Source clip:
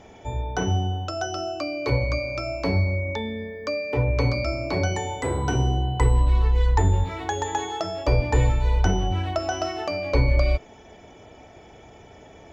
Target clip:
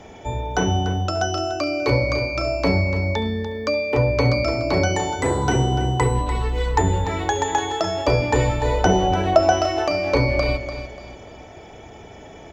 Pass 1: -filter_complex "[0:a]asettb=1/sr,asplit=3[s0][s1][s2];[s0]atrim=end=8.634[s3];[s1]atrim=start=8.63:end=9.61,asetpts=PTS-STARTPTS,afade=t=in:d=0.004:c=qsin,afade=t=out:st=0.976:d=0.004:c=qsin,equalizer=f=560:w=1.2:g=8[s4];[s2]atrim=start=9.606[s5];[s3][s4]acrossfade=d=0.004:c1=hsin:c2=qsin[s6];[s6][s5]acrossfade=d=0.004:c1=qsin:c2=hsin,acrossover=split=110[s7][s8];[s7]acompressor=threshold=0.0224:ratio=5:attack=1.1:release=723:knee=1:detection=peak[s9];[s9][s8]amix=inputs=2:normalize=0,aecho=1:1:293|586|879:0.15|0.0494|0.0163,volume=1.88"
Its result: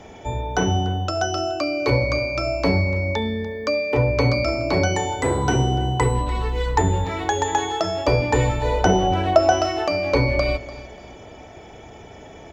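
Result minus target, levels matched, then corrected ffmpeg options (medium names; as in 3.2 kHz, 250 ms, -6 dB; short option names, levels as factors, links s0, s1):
echo-to-direct -6 dB
-filter_complex "[0:a]asettb=1/sr,asplit=3[s0][s1][s2];[s0]atrim=end=8.634[s3];[s1]atrim=start=8.63:end=9.61,asetpts=PTS-STARTPTS,afade=t=in:d=0.004:c=qsin,afade=t=out:st=0.976:d=0.004:c=qsin,equalizer=f=560:w=1.2:g=8[s4];[s2]atrim=start=9.606[s5];[s3][s4]acrossfade=d=0.004:c1=hsin:c2=qsin[s6];[s6][s5]acrossfade=d=0.004:c1=qsin:c2=hsin,acrossover=split=110[s7][s8];[s7]acompressor=threshold=0.0224:ratio=5:attack=1.1:release=723:knee=1:detection=peak[s9];[s9][s8]amix=inputs=2:normalize=0,aecho=1:1:293|586|879|1172:0.316|0.104|0.0344|0.0114,volume=1.88"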